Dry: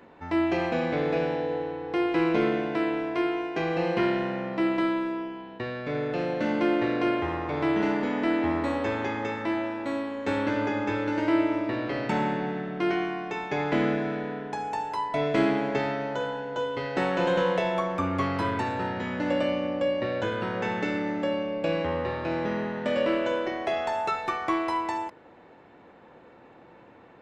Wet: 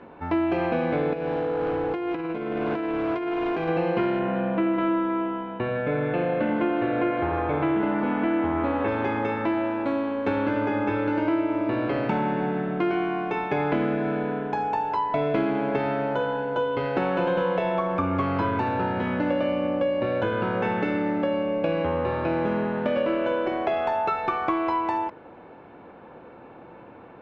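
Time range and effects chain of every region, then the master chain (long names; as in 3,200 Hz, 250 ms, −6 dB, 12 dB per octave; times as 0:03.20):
0:01.13–0:03.69: compressor whose output falls as the input rises −32 dBFS + gain into a clipping stage and back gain 28.5 dB
0:04.19–0:08.88: low-pass filter 3,600 Hz 24 dB per octave + echo with a time of its own for lows and highs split 890 Hz, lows 87 ms, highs 158 ms, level −7 dB
whole clip: low-pass filter 2,500 Hz 12 dB per octave; notch filter 1,900 Hz, Q 6.9; downward compressor 4 to 1, threshold −28 dBFS; level +6.5 dB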